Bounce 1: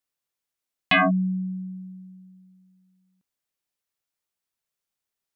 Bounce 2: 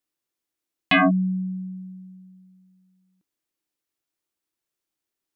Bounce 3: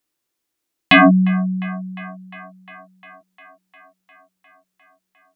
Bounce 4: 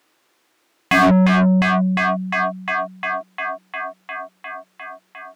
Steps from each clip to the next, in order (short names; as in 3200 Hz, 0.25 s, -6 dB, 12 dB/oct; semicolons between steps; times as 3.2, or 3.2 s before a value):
bell 320 Hz +12.5 dB 0.47 oct
band-limited delay 0.353 s, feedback 75%, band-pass 1200 Hz, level -18 dB; gain +7.5 dB
overdrive pedal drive 36 dB, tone 1400 Hz, clips at -2 dBFS; gain -4.5 dB